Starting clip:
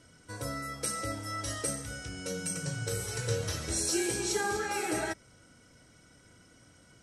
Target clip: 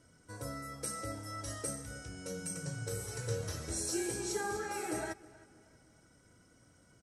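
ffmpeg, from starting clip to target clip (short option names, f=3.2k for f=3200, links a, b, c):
-filter_complex "[0:a]equalizer=f=3.1k:w=0.94:g=-6.5,asplit=2[a][b];[b]adelay=317,lowpass=f=3.9k:p=1,volume=-20dB,asplit=2[c][d];[d]adelay=317,lowpass=f=3.9k:p=1,volume=0.43,asplit=2[e][f];[f]adelay=317,lowpass=f=3.9k:p=1,volume=0.43[g];[c][e][g]amix=inputs=3:normalize=0[h];[a][h]amix=inputs=2:normalize=0,volume=-4.5dB"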